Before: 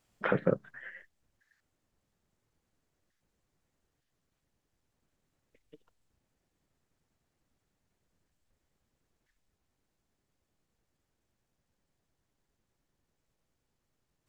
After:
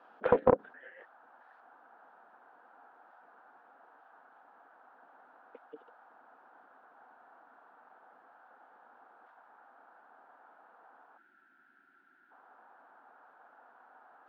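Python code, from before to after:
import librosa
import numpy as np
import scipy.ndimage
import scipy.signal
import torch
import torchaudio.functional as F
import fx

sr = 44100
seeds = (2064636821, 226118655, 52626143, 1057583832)

p1 = fx.dmg_noise_band(x, sr, seeds[0], low_hz=700.0, high_hz=1600.0, level_db=-68.0)
p2 = fx.high_shelf(p1, sr, hz=2200.0, db=-5.0)
p3 = fx.over_compress(p2, sr, threshold_db=-58.0, ratio=-0.5)
p4 = p2 + (p3 * 10.0 ** (-2.5 / 20.0))
p5 = fx.spec_box(p4, sr, start_s=11.18, length_s=1.13, low_hz=390.0, high_hz=1300.0, gain_db=-20)
p6 = fx.cabinet(p5, sr, low_hz=260.0, low_slope=24, high_hz=3400.0, hz=(260.0, 490.0, 750.0, 1100.0, 2000.0), db=(6, 10, 3, -6, -8))
p7 = fx.doppler_dist(p6, sr, depth_ms=0.45)
y = p7 * 10.0 ** (-1.5 / 20.0)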